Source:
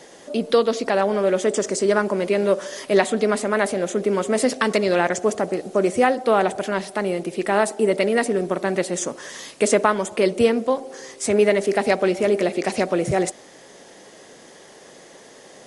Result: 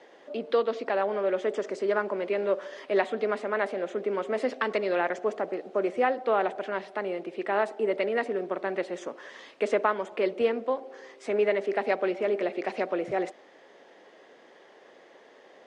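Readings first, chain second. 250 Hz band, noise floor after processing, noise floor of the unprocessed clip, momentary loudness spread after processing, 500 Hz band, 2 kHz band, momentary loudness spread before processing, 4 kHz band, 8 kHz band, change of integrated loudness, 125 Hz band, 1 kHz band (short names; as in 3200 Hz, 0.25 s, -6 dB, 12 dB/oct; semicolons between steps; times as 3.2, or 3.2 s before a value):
-11.5 dB, -55 dBFS, -46 dBFS, 7 LU, -7.5 dB, -7.0 dB, 7 LU, -12.0 dB, under -25 dB, -8.0 dB, under -15 dB, -6.5 dB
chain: LPF 7300 Hz 12 dB/oct; three-band isolator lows -19 dB, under 260 Hz, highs -19 dB, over 3500 Hz; gain -6.5 dB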